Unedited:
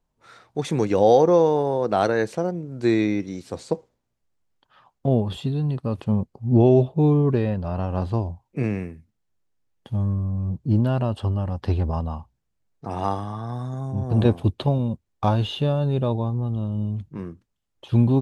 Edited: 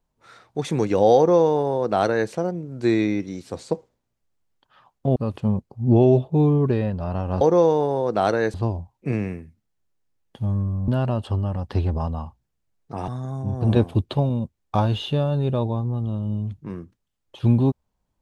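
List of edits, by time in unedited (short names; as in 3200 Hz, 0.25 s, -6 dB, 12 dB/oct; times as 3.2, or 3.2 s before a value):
1.17–2.3 copy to 8.05
5.16–5.8 cut
10.39–10.81 cut
13.01–13.57 cut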